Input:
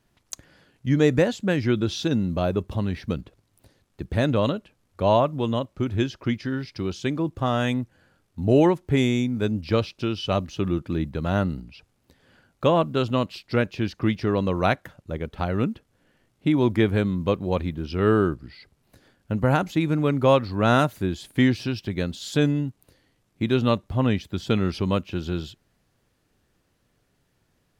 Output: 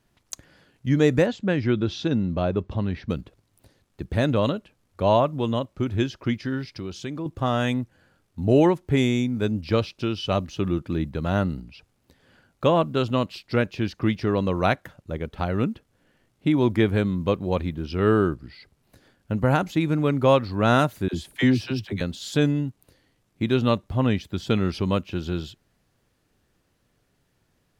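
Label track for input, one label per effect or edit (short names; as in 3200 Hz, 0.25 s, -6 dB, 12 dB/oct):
1.260000	3.100000	air absorption 120 m
6.660000	7.260000	compressor 2:1, threshold -32 dBFS
21.080000	22.010000	dispersion lows, late by 53 ms, half as late at 520 Hz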